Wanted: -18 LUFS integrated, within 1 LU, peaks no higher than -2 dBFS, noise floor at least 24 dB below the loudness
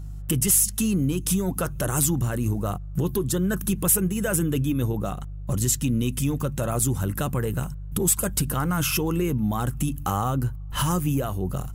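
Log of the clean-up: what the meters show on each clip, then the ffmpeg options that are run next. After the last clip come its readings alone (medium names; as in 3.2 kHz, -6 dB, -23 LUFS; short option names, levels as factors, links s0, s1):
hum 50 Hz; highest harmonic 150 Hz; hum level -32 dBFS; loudness -24.5 LUFS; peak level -9.5 dBFS; loudness target -18.0 LUFS
-> -af "bandreject=f=50:t=h:w=4,bandreject=f=100:t=h:w=4,bandreject=f=150:t=h:w=4"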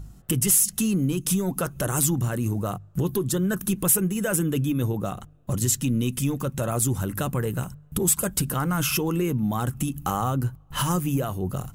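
hum not found; loudness -24.5 LUFS; peak level -10.0 dBFS; loudness target -18.0 LUFS
-> -af "volume=2.11"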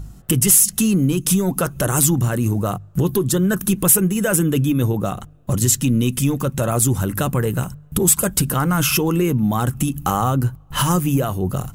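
loudness -18.0 LUFS; peak level -3.5 dBFS; noise floor -43 dBFS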